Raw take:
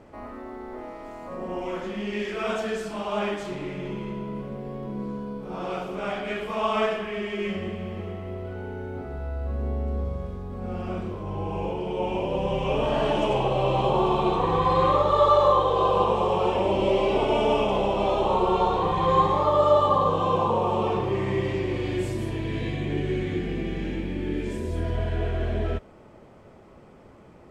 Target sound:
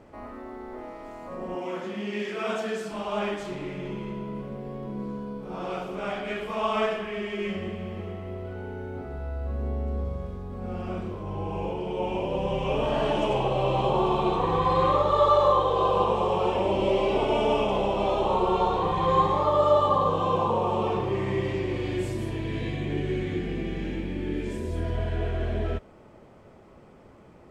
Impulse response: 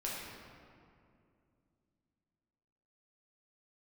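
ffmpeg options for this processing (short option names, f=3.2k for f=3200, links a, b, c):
-filter_complex "[0:a]asettb=1/sr,asplit=3[a][b][c];[a]atrim=end=1.554[d];[b]atrim=start=1.55:end=2.92,asetpts=PTS-STARTPTS,afade=t=in:d=0.004:c=qsin,afade=t=out:st=1.366:d=0.004:c=qsin,highpass=f=120:w=0.5412,highpass=f=120:w=1.3066[e];[c]atrim=start=2.916[f];[d][e]acrossfade=d=0.004:c1=hsin:c2=qsin[g];[g][f]acrossfade=d=0.004:c1=qsin:c2=hsin,volume=-1.5dB"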